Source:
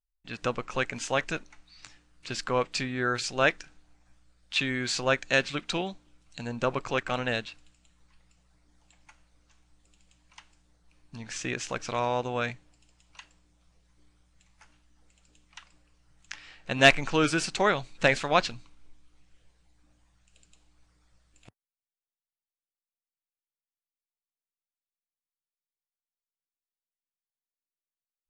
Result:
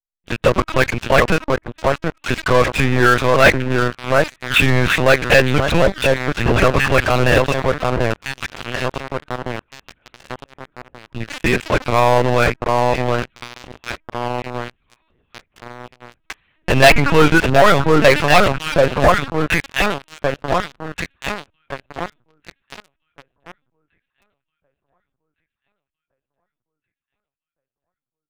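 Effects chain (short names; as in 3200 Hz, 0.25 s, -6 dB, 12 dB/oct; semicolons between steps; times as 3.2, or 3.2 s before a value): air absorption 170 m; on a send: echo with dull and thin repeats by turns 0.733 s, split 1400 Hz, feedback 65%, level -4 dB; on the sum: LPC vocoder at 8 kHz pitch kept; sample leveller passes 5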